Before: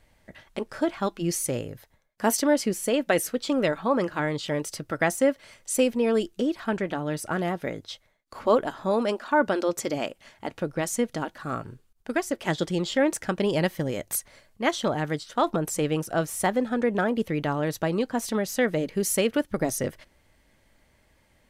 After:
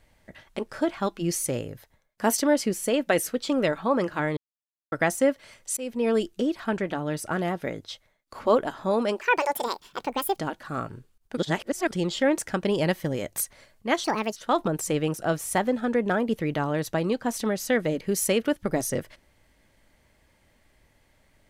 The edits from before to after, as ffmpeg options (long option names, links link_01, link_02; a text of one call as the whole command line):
ffmpeg -i in.wav -filter_complex "[0:a]asplit=10[link_01][link_02][link_03][link_04][link_05][link_06][link_07][link_08][link_09][link_10];[link_01]atrim=end=4.37,asetpts=PTS-STARTPTS,afade=type=out:start_time=4.366:duration=0.004:curve=hsin[link_11];[link_02]atrim=start=4.37:end=4.92,asetpts=PTS-STARTPTS,volume=0[link_12];[link_03]atrim=start=4.92:end=5.77,asetpts=PTS-STARTPTS,afade=type=in:duration=0.004:curve=hsin,afade=type=out:start_time=0.846:duration=0.004:curve=hsin:silence=0.0668344[link_13];[link_04]atrim=start=5.77:end=9.214,asetpts=PTS-STARTPTS,afade=type=in:duration=0.31:silence=0.0668344[link_14];[link_05]atrim=start=9.21:end=11.13,asetpts=PTS-STARTPTS,asetrate=72324,aresample=44100,atrim=end_sample=51629,asetpts=PTS-STARTPTS[link_15];[link_06]atrim=start=11.126:end=12.122[link_16];[link_07]atrim=start=12.118:end=12.662,asetpts=PTS-STARTPTS,areverse[link_17];[link_08]atrim=start=12.658:end=14.794[link_18];[link_09]atrim=start=14.79:end=15.25,asetpts=PTS-STARTPTS,asetrate=62622,aresample=44100[link_19];[link_10]atrim=start=15.246[link_20];[link_11][link_12][link_13][link_14]concat=n=4:v=0:a=1[link_21];[link_21][link_15]acrossfade=duration=0.004:curve1=hsin:curve2=hsin[link_22];[link_22][link_16]acrossfade=duration=0.004:curve1=hsin:curve2=hsin[link_23];[link_23][link_17]acrossfade=duration=0.004:curve1=hsin:curve2=hsin[link_24];[link_24][link_18]acrossfade=duration=0.004:curve1=hsin:curve2=hsin[link_25];[link_25][link_19]acrossfade=duration=0.004:curve1=hsin:curve2=hsin[link_26];[link_26][link_20]acrossfade=duration=0.004:curve1=hsin:curve2=hsin" out.wav